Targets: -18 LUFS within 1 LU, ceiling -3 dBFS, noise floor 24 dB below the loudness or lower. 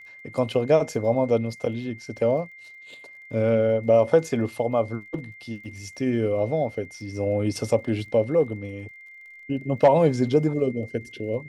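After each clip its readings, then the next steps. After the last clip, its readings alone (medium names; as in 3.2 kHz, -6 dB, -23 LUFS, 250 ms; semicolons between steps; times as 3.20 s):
tick rate 38 per s; steady tone 2.1 kHz; tone level -43 dBFS; loudness -24.0 LUFS; peak level -6.5 dBFS; loudness target -18.0 LUFS
-> de-click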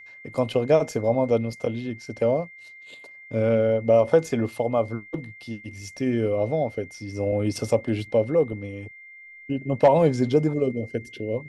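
tick rate 0.17 per s; steady tone 2.1 kHz; tone level -43 dBFS
-> band-stop 2.1 kHz, Q 30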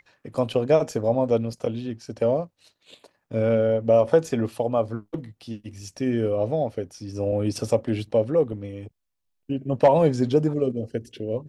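steady tone not found; loudness -24.0 LUFS; peak level -6.5 dBFS; loudness target -18.0 LUFS
-> trim +6 dB; peak limiter -3 dBFS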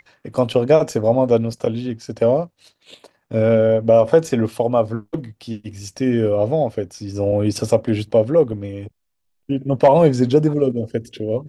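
loudness -18.5 LUFS; peak level -3.0 dBFS; noise floor -70 dBFS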